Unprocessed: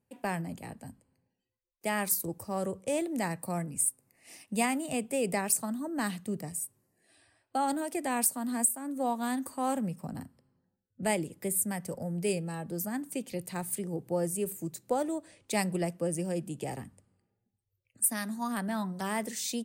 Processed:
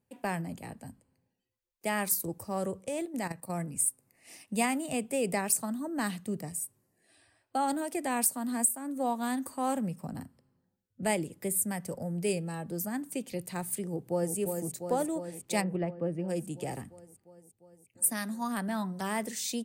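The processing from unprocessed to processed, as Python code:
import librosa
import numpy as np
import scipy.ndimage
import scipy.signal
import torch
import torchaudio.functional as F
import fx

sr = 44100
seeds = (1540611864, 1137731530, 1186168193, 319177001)

y = fx.level_steps(x, sr, step_db=11, at=(2.86, 3.6))
y = fx.echo_throw(y, sr, start_s=13.87, length_s=0.49, ms=350, feedback_pct=75, wet_db=-5.5)
y = fx.air_absorb(y, sr, metres=450.0, at=(15.6, 16.28), fade=0.02)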